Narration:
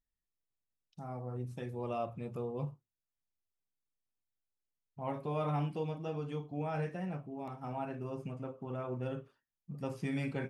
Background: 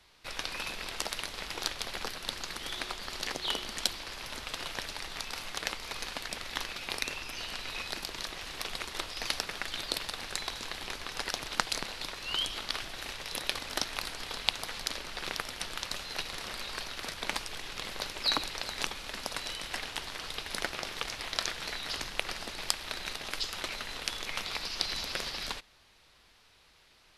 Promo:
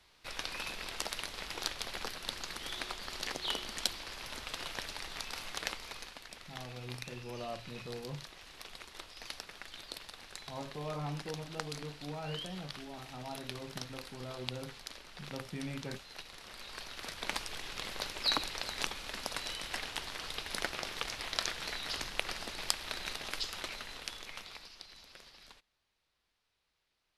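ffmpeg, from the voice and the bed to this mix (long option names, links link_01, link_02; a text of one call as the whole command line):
ffmpeg -i stem1.wav -i stem2.wav -filter_complex "[0:a]adelay=5500,volume=-5dB[link_01];[1:a]volume=6.5dB,afade=type=out:start_time=5.68:duration=0.47:silence=0.375837,afade=type=in:start_time=16.43:duration=1.03:silence=0.334965,afade=type=out:start_time=23.21:duration=1.62:silence=0.133352[link_02];[link_01][link_02]amix=inputs=2:normalize=0" out.wav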